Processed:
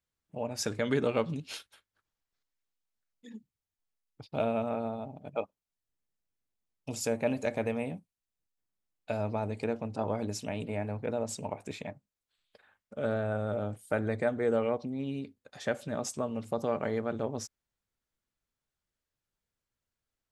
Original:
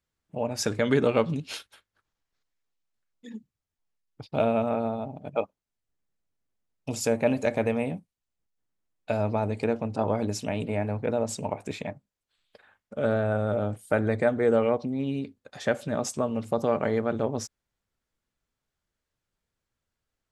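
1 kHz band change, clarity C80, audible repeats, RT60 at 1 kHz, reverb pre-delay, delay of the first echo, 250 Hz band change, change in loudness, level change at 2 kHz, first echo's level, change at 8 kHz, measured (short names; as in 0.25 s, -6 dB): -6.0 dB, none, none, none, none, none, -6.0 dB, -6.0 dB, -5.5 dB, none, -4.0 dB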